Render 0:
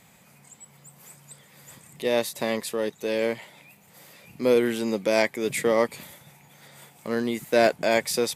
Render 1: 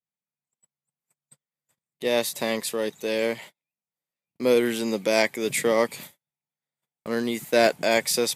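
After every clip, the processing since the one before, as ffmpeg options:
-af "agate=range=-44dB:threshold=-42dB:ratio=16:detection=peak,highpass=97,adynamicequalizer=threshold=0.0112:dfrequency=2300:dqfactor=0.7:tfrequency=2300:tqfactor=0.7:attack=5:release=100:ratio=0.375:range=2:mode=boostabove:tftype=highshelf"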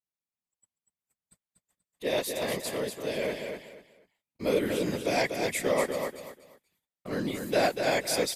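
-af "afftfilt=real='hypot(re,im)*cos(2*PI*random(0))':imag='hypot(re,im)*sin(2*PI*random(1))':win_size=512:overlap=0.75,aecho=1:1:241|482|723:0.501|0.125|0.0313"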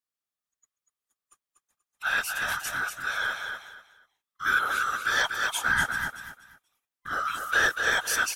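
-af "afftfilt=real='real(if(lt(b,960),b+48*(1-2*mod(floor(b/48),2)),b),0)':imag='imag(if(lt(b,960),b+48*(1-2*mod(floor(b/48),2)),b),0)':win_size=2048:overlap=0.75,volume=1.5dB"

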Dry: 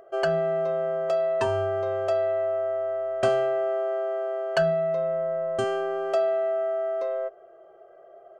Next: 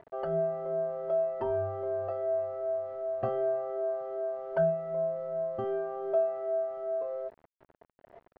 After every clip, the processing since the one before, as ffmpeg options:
-af "afftfilt=real='re*pow(10,12/40*sin(2*PI*(1.6*log(max(b,1)*sr/1024/100)/log(2)-(2.6)*(pts-256)/sr)))':imag='im*pow(10,12/40*sin(2*PI*(1.6*log(max(b,1)*sr/1024/100)/log(2)-(2.6)*(pts-256)/sr)))':win_size=1024:overlap=0.75,acrusher=bits=6:mix=0:aa=0.000001,lowpass=1k,volume=-7dB"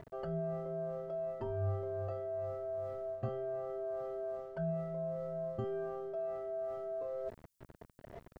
-af "equalizer=f=780:w=2.4:g=-4,areverse,acompressor=threshold=-42dB:ratio=6,areverse,bass=f=250:g=12,treble=f=4k:g=13,volume=3.5dB"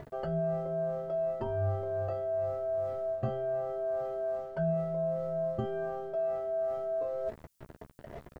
-filter_complex "[0:a]asplit=2[a][b];[b]adelay=14,volume=-8dB[c];[a][c]amix=inputs=2:normalize=0,volume=5.5dB"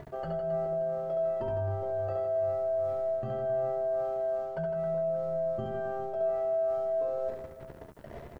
-af "alimiter=level_in=3dB:limit=-24dB:level=0:latency=1:release=91,volume=-3dB,aecho=1:1:70|157.5|266.9|403.6|574.5:0.631|0.398|0.251|0.158|0.1"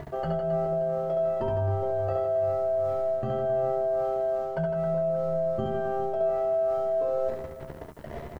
-filter_complex "[0:a]asplit=2[a][b];[b]adelay=13,volume=-11dB[c];[a][c]amix=inputs=2:normalize=0,volume=6dB"

